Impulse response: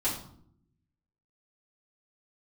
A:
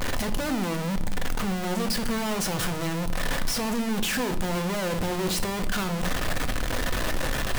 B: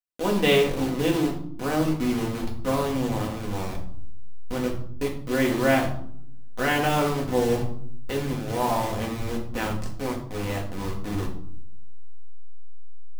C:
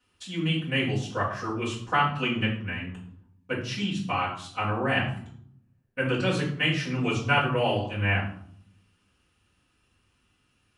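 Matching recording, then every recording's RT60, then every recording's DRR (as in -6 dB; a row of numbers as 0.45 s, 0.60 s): C; 0.70 s, 0.65 s, 0.65 s; 7.0 dB, -2.0 dB, -9.0 dB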